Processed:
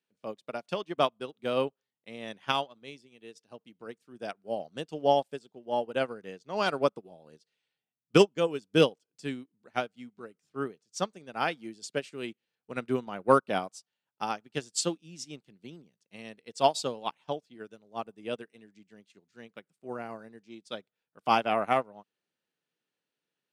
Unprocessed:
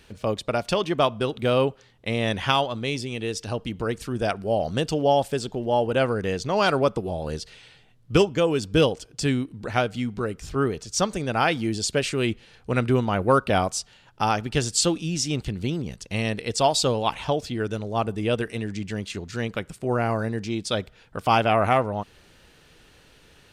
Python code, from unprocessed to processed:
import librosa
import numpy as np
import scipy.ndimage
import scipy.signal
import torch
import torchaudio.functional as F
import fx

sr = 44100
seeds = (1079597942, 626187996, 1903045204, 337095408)

y = scipy.signal.sosfilt(scipy.signal.butter(4, 160.0, 'highpass', fs=sr, output='sos'), x)
y = fx.upward_expand(y, sr, threshold_db=-37.0, expansion=2.5)